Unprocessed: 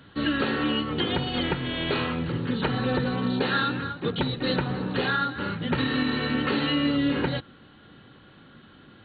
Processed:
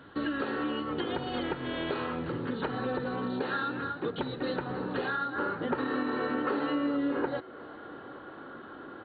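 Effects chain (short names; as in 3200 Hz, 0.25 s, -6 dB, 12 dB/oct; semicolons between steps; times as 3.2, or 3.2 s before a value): band shelf 670 Hz +8.5 dB 2.9 oct, from 5.32 s +16 dB; compressor 3:1, threshold -26 dBFS, peak gain reduction 14 dB; frequency-shifting echo 0.37 s, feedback 62%, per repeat +92 Hz, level -24 dB; gain -5.5 dB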